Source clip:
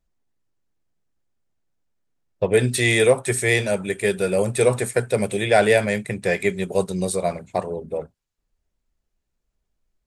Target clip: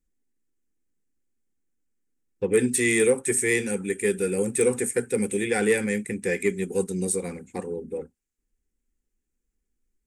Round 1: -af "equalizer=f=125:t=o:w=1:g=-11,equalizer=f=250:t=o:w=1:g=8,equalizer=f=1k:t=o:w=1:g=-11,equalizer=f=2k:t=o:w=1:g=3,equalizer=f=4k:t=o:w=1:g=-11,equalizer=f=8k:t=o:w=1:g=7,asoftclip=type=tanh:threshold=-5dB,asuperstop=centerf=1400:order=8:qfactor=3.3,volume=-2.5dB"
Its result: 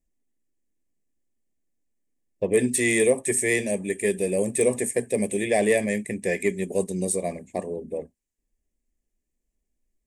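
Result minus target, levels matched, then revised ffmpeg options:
1000 Hz band +3.0 dB
-af "equalizer=f=125:t=o:w=1:g=-11,equalizer=f=250:t=o:w=1:g=8,equalizer=f=1k:t=o:w=1:g=-11,equalizer=f=2k:t=o:w=1:g=3,equalizer=f=4k:t=o:w=1:g=-11,equalizer=f=8k:t=o:w=1:g=7,asoftclip=type=tanh:threshold=-5dB,asuperstop=centerf=630:order=8:qfactor=3.3,volume=-2.5dB"

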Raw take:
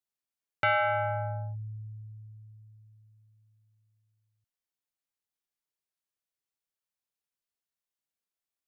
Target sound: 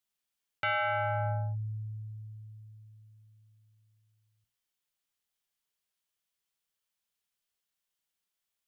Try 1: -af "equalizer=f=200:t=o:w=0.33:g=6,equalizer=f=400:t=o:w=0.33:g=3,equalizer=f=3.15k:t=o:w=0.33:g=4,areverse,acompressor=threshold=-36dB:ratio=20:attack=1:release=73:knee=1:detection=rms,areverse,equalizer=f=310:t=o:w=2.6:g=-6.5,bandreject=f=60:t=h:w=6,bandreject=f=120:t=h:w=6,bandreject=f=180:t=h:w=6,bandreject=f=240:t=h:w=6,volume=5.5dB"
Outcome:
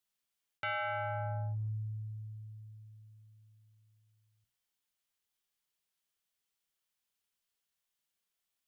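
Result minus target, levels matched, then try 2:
compressor: peak gain reduction +5.5 dB
-af "equalizer=f=200:t=o:w=0.33:g=6,equalizer=f=400:t=o:w=0.33:g=3,equalizer=f=3.15k:t=o:w=0.33:g=4,areverse,acompressor=threshold=-30dB:ratio=20:attack=1:release=73:knee=1:detection=rms,areverse,equalizer=f=310:t=o:w=2.6:g=-6.5,bandreject=f=60:t=h:w=6,bandreject=f=120:t=h:w=6,bandreject=f=180:t=h:w=6,bandreject=f=240:t=h:w=6,volume=5.5dB"

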